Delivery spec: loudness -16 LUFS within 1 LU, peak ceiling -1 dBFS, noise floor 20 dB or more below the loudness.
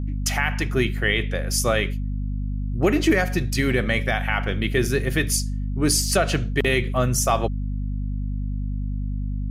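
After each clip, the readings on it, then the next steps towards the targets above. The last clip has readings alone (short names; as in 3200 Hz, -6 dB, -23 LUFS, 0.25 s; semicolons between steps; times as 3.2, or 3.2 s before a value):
hum 50 Hz; harmonics up to 250 Hz; hum level -23 dBFS; loudness -23.0 LUFS; peak -8.0 dBFS; loudness target -16.0 LUFS
-> de-hum 50 Hz, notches 5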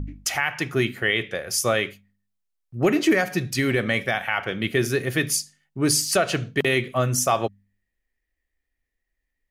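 hum none; loudness -23.0 LUFS; peak -9.5 dBFS; loudness target -16.0 LUFS
-> gain +7 dB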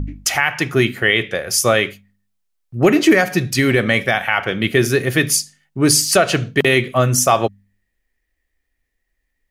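loudness -16.0 LUFS; peak -2.5 dBFS; noise floor -73 dBFS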